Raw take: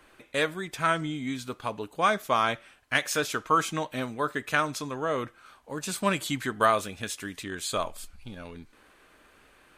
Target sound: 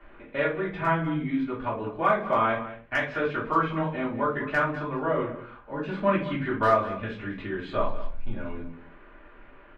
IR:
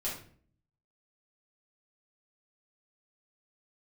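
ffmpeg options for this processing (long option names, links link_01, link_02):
-filter_complex "[0:a]lowpass=frequency=2400:width=0.5412,lowpass=frequency=2400:width=1.3066,asplit=2[link_01][link_02];[link_02]acompressor=threshold=-38dB:ratio=6,volume=1dB[link_03];[link_01][link_03]amix=inputs=2:normalize=0,asoftclip=type=hard:threshold=-11dB,asplit=2[link_04][link_05];[link_05]adelay=198.3,volume=-14dB,highshelf=frequency=4000:gain=-4.46[link_06];[link_04][link_06]amix=inputs=2:normalize=0[link_07];[1:a]atrim=start_sample=2205,asetrate=70560,aresample=44100[link_08];[link_07][link_08]afir=irnorm=-1:irlink=0"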